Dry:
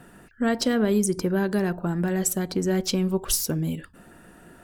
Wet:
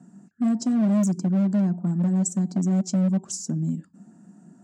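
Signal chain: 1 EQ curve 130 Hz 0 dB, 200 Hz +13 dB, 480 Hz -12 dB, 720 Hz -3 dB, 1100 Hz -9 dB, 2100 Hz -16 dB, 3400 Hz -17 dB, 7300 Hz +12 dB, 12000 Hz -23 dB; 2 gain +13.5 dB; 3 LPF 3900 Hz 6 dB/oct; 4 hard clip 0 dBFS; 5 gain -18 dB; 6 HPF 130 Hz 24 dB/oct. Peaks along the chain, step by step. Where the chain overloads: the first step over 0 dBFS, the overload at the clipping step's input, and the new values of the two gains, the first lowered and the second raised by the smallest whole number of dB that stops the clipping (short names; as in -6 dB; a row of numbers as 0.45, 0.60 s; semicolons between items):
-5.0, +8.5, +8.5, 0.0, -18.0, -13.5 dBFS; step 2, 8.5 dB; step 2 +4.5 dB, step 5 -9 dB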